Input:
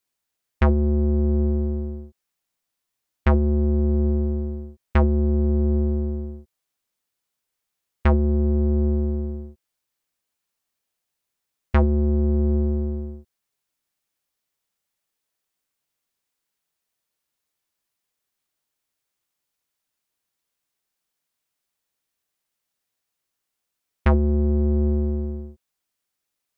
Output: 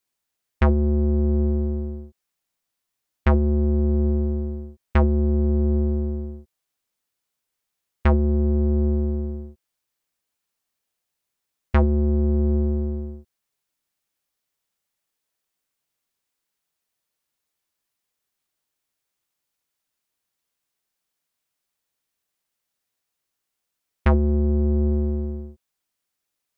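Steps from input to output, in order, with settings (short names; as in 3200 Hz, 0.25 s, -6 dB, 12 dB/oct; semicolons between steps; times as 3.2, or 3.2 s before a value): 24.39–24.92 air absorption 160 m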